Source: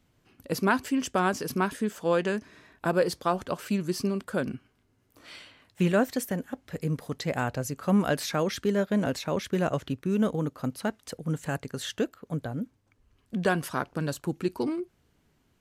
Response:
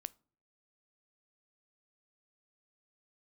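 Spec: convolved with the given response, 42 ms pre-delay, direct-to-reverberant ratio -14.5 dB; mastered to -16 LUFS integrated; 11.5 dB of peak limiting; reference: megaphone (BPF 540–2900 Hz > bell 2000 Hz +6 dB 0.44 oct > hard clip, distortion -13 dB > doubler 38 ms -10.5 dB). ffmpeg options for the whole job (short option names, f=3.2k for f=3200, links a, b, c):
-filter_complex "[0:a]alimiter=limit=-23dB:level=0:latency=1,asplit=2[a][b];[1:a]atrim=start_sample=2205,adelay=42[c];[b][c]afir=irnorm=-1:irlink=0,volume=18dB[d];[a][d]amix=inputs=2:normalize=0,highpass=540,lowpass=2.9k,equalizer=f=2k:t=o:w=0.44:g=6,asoftclip=type=hard:threshold=-16dB,asplit=2[e][f];[f]adelay=38,volume=-10.5dB[g];[e][g]amix=inputs=2:normalize=0,volume=10dB"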